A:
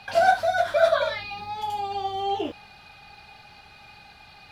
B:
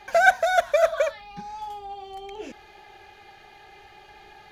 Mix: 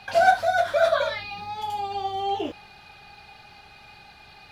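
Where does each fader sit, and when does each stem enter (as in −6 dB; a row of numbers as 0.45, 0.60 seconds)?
0.0, −11.0 decibels; 0.00, 0.00 seconds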